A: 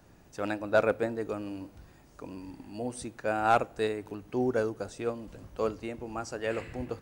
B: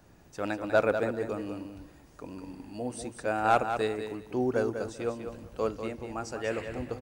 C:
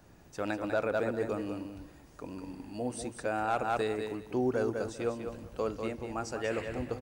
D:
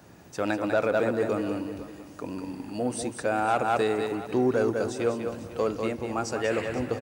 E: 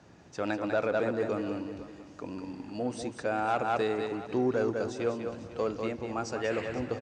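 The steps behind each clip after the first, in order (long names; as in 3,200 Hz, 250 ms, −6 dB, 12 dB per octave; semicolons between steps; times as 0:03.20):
repeating echo 195 ms, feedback 18%, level −8 dB
brickwall limiter −21 dBFS, peak gain reduction 8.5 dB
in parallel at −5 dB: soft clipping −30 dBFS, distortion −11 dB; on the sum: high-pass filter 95 Hz; single-tap delay 496 ms −15.5 dB; level +3.5 dB
low-pass filter 6,900 Hz 24 dB per octave; level −4 dB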